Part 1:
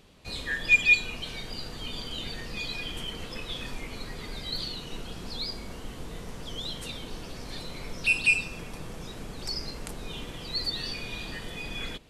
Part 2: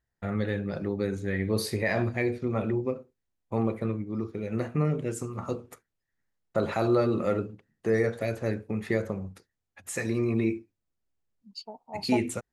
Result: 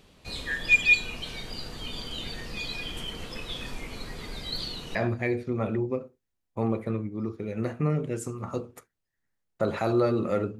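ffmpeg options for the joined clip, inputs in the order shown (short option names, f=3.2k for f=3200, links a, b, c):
-filter_complex "[0:a]apad=whole_dur=10.59,atrim=end=10.59,atrim=end=4.952[a];[1:a]atrim=start=1.898:end=7.54[b];[a][b]acrossfade=d=0.004:c1=hsin:c2=hsin"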